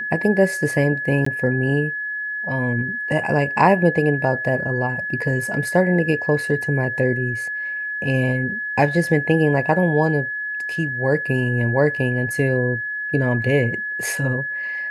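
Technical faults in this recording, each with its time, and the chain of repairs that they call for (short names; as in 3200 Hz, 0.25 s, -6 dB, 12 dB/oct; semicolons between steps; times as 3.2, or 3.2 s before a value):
tone 1700 Hz -24 dBFS
1.25–1.26 gap 14 ms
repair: notch 1700 Hz, Q 30; interpolate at 1.25, 14 ms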